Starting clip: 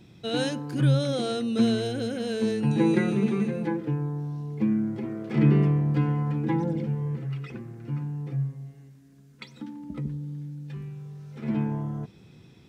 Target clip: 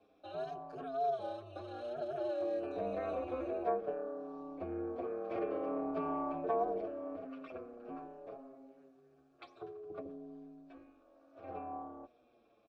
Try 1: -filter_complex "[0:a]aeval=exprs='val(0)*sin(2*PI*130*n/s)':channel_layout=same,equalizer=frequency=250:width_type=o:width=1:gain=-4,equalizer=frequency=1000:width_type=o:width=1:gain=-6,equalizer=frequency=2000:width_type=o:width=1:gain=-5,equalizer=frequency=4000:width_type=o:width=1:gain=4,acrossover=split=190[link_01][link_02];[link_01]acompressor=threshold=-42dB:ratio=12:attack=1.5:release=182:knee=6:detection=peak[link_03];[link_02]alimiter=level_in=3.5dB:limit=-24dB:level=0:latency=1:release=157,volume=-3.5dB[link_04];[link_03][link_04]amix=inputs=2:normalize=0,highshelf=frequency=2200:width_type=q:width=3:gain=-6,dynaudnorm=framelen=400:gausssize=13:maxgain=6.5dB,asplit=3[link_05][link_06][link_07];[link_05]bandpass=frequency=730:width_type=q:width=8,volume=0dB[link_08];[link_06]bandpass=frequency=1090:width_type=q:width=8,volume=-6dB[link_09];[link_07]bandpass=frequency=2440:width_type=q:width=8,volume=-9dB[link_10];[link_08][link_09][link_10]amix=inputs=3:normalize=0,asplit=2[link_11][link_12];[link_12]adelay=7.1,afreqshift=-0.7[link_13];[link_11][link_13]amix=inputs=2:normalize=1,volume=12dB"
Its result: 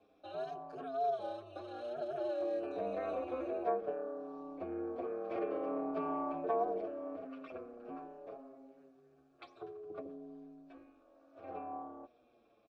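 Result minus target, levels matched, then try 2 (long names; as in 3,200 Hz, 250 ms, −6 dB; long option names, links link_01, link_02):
downward compressor: peak gain reduction +8 dB
-filter_complex "[0:a]aeval=exprs='val(0)*sin(2*PI*130*n/s)':channel_layout=same,equalizer=frequency=250:width_type=o:width=1:gain=-4,equalizer=frequency=1000:width_type=o:width=1:gain=-6,equalizer=frequency=2000:width_type=o:width=1:gain=-5,equalizer=frequency=4000:width_type=o:width=1:gain=4,acrossover=split=190[link_01][link_02];[link_01]acompressor=threshold=-33.5dB:ratio=12:attack=1.5:release=182:knee=6:detection=peak[link_03];[link_02]alimiter=level_in=3.5dB:limit=-24dB:level=0:latency=1:release=157,volume=-3.5dB[link_04];[link_03][link_04]amix=inputs=2:normalize=0,highshelf=frequency=2200:width_type=q:width=3:gain=-6,dynaudnorm=framelen=400:gausssize=13:maxgain=6.5dB,asplit=3[link_05][link_06][link_07];[link_05]bandpass=frequency=730:width_type=q:width=8,volume=0dB[link_08];[link_06]bandpass=frequency=1090:width_type=q:width=8,volume=-6dB[link_09];[link_07]bandpass=frequency=2440:width_type=q:width=8,volume=-9dB[link_10];[link_08][link_09][link_10]amix=inputs=3:normalize=0,asplit=2[link_11][link_12];[link_12]adelay=7.1,afreqshift=-0.7[link_13];[link_11][link_13]amix=inputs=2:normalize=1,volume=12dB"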